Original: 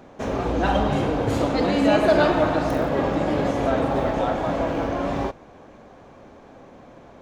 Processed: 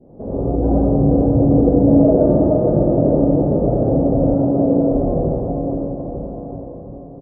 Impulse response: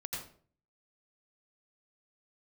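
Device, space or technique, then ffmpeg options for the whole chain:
next room: -filter_complex "[0:a]lowpass=f=610:w=0.5412,lowpass=f=610:w=1.3066[a];[1:a]atrim=start_sample=2205[b];[a][b]afir=irnorm=-1:irlink=0,aecho=1:1:470|893|1274|1616|1925:0.631|0.398|0.251|0.158|0.1,adynamicequalizer=threshold=0.0141:dfrequency=1100:dqfactor=0.99:tfrequency=1100:tqfactor=0.99:attack=5:release=100:ratio=0.375:range=1.5:mode=cutabove:tftype=bell,asettb=1/sr,asplit=3[c][d][e];[c]atrim=end=4.344[f];[d]atrim=start=4.34:end=4.92,asetpts=PTS-STARTPTS,afade=t=in:d=0.004:c=qsin,afade=t=out:st=0.576:d=0.004:c=qsin,highpass=100[g];[e]atrim=start=4.916[h];[f][g]acrossfade=d=0.004:c1=hsin:c2=qsin[i];[i][h]acrossfade=d=0.004:c1=qsin:c2=hsin,volume=5dB"

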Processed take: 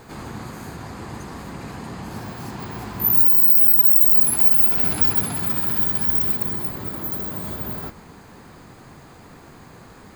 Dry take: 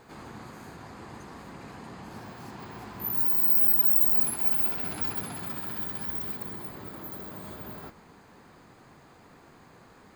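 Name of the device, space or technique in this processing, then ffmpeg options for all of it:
ASMR close-microphone chain: -af "lowshelf=f=170:g=7,acompressor=threshold=-24dB:ratio=5,highshelf=f=6.4k:g=6.5,volume=7.5dB"

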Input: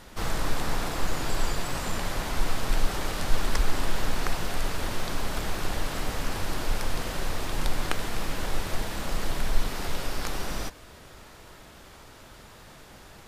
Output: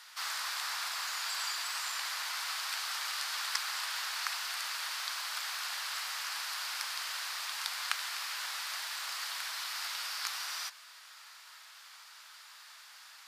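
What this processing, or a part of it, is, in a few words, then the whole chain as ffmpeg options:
headphones lying on a table: -af "highpass=f=1.1k:w=0.5412,highpass=f=1.1k:w=1.3066,equalizer=f=4.7k:t=o:w=0.53:g=6,volume=-1.5dB"

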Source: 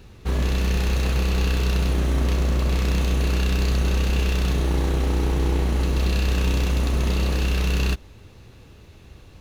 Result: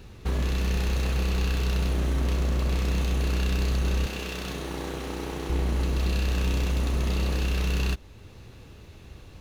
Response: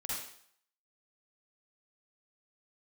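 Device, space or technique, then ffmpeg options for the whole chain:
clipper into limiter: -filter_complex "[0:a]asoftclip=type=hard:threshold=-15.5dB,alimiter=limit=-19.5dB:level=0:latency=1:release=429,asettb=1/sr,asplit=3[a][b][c];[a]atrim=end=4.064[d];[b]atrim=start=4.06:end=5.5,asetpts=PTS-STARTPTS,afade=t=in:d=0.004:c=qsin,afade=t=out:st=1.436:d=0.004:c=qsin,highpass=f=270:p=1[e];[c]atrim=start=5.496[f];[d][e]acrossfade=d=0.004:c1=hsin:c2=qsin[g];[g][f]acrossfade=d=0.004:c1=qsin:c2=hsin"

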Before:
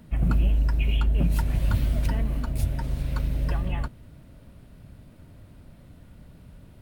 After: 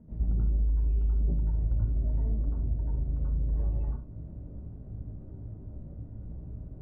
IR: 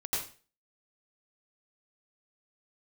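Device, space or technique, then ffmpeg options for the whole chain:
television next door: -filter_complex "[0:a]acompressor=threshold=-35dB:ratio=4,lowpass=490[a];[1:a]atrim=start_sample=2205[b];[a][b]afir=irnorm=-1:irlink=0"

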